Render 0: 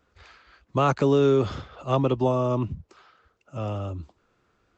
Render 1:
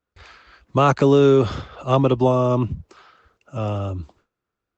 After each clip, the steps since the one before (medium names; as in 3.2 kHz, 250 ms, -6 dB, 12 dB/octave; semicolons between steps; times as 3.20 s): gate with hold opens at -55 dBFS; trim +5.5 dB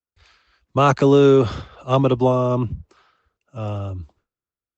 three bands expanded up and down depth 40%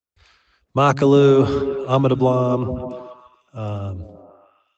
repeats whose band climbs or falls 143 ms, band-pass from 180 Hz, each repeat 0.7 oct, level -6 dB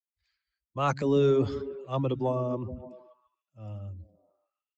expander on every frequency bin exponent 1.5; transient shaper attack -5 dB, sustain +1 dB; trim -8.5 dB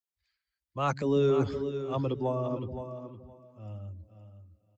feedback delay 516 ms, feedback 16%, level -10 dB; trim -2 dB